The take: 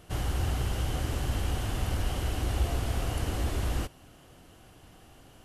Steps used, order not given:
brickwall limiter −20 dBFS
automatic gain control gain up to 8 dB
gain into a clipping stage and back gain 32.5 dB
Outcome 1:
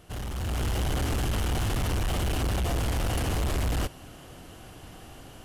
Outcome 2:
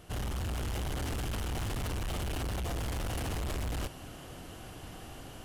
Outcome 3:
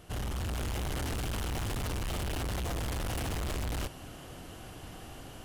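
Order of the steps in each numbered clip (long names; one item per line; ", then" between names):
brickwall limiter, then gain into a clipping stage and back, then automatic gain control
automatic gain control, then brickwall limiter, then gain into a clipping stage and back
brickwall limiter, then automatic gain control, then gain into a clipping stage and back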